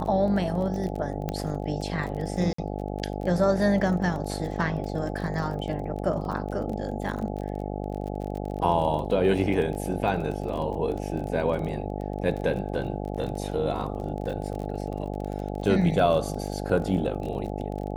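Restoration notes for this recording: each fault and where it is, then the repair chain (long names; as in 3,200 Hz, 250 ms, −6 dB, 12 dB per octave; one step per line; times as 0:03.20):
mains buzz 50 Hz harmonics 17 −32 dBFS
surface crackle 28 per second −33 dBFS
0:01.29: click −16 dBFS
0:02.53–0:02.58: drop-out 54 ms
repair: click removal
hum removal 50 Hz, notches 17
repair the gap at 0:02.53, 54 ms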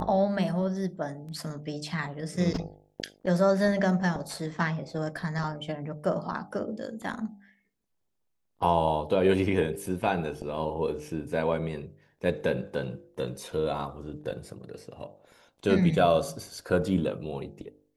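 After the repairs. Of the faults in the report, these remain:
0:01.29: click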